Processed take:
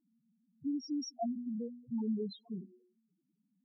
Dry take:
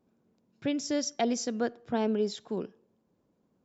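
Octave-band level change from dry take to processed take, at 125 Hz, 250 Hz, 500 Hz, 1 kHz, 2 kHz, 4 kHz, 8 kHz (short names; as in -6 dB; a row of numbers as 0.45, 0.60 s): -4.5 dB, -4.5 dB, -13.5 dB, -10.5 dB, under -40 dB, -11.5 dB, n/a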